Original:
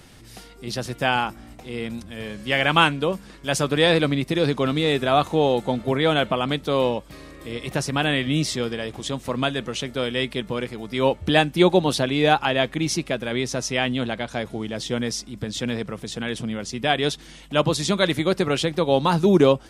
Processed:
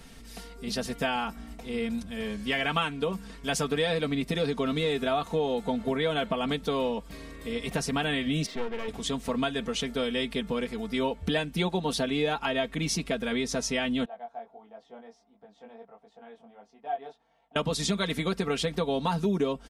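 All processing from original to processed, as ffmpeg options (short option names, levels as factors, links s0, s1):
-filter_complex "[0:a]asettb=1/sr,asplit=3[s0][s1][s2];[s0]atrim=end=8.464[s3];[s1]atrim=start=8.46:end=8.88,asetpts=PTS-STARTPTS,afade=t=in:d=0.004:c=qsin,afade=t=out:st=0.416:d=0.004:c=qsin,highpass=230,lowpass=2200,aeval=exprs='clip(val(0),-1,0.0133)':c=same[s4];[s2]atrim=start=8.876[s5];[s3][s4]acrossfade=d=0.004:c1=hsin:c2=qsin[s6];[s6][s5]acrossfade=d=0.004:c1=qsin:c2=hsin,asettb=1/sr,asplit=3[s7][s8][s9];[s7]atrim=end=14.054[s10];[s8]atrim=start=14.05:end=17.56,asetpts=PTS-STARTPTS,afade=t=in:d=0.004:c=qsin,afade=t=out:st=3.506:d=0.004:c=qsin,bandpass=f=760:t=q:w=5.7,flanger=delay=19:depth=3.1:speed=1.5[s11];[s9]atrim=start=17.556[s12];[s10][s11]acrossfade=d=0.004:c1=hsin:c2=qsin[s13];[s13][s12]acrossfade=d=0.004:c1=qsin:c2=hsin,lowshelf=f=89:g=5.5,aecho=1:1:4.4:0.77,acompressor=threshold=0.0891:ratio=4,volume=0.631"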